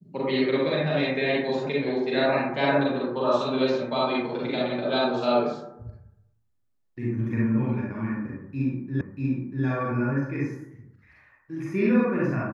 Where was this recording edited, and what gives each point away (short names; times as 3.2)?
9.01 repeat of the last 0.64 s